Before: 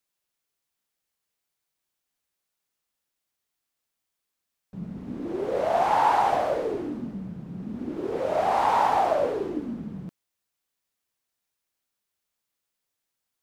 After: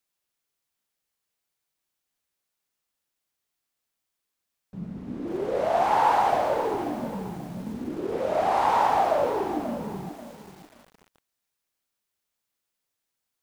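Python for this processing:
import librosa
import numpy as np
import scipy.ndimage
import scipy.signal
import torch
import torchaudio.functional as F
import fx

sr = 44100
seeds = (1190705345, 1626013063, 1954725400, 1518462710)

y = fx.echo_crushed(x, sr, ms=536, feedback_pct=35, bits=7, wet_db=-10.5)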